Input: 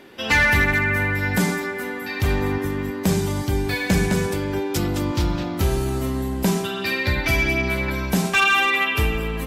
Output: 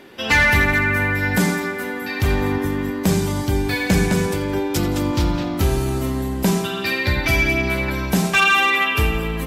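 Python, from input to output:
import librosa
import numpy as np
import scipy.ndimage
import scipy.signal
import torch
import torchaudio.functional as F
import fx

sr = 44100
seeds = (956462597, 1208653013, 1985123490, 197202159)

y = fx.echo_feedback(x, sr, ms=85, feedback_pct=54, wet_db=-16.0)
y = F.gain(torch.from_numpy(y), 2.0).numpy()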